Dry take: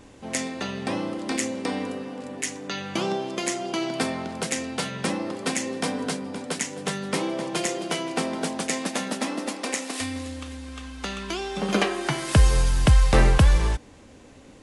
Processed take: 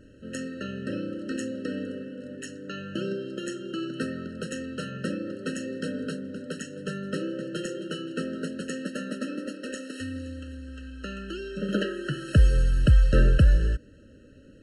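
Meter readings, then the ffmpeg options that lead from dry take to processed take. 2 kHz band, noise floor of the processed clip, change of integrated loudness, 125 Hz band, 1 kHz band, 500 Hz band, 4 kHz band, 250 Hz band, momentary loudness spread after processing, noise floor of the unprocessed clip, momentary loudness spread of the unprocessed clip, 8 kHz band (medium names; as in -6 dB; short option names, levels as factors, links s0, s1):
-6.5 dB, -52 dBFS, -3.0 dB, -1.0 dB, -14.0 dB, -4.5 dB, -9.0 dB, -2.5 dB, 17 LU, -49 dBFS, 13 LU, -14.0 dB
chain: -af "bass=f=250:g=3,treble=f=4000:g=-8,afftfilt=real='re*eq(mod(floor(b*sr/1024/640),2),0)':imag='im*eq(mod(floor(b*sr/1024/640),2),0)':win_size=1024:overlap=0.75,volume=0.631"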